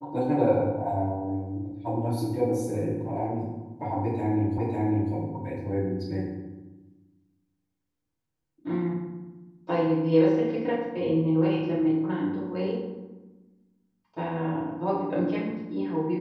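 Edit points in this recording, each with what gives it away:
4.58 repeat of the last 0.55 s

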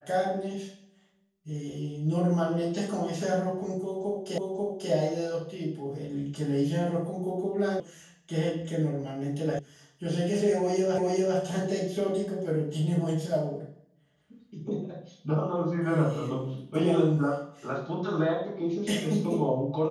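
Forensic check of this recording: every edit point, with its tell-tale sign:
4.38 repeat of the last 0.54 s
7.8 sound cut off
9.59 sound cut off
10.98 repeat of the last 0.4 s

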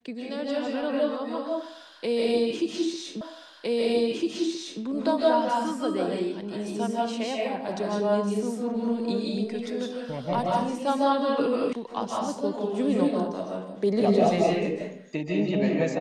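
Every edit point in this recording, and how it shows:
3.21 repeat of the last 1.61 s
11.73 sound cut off

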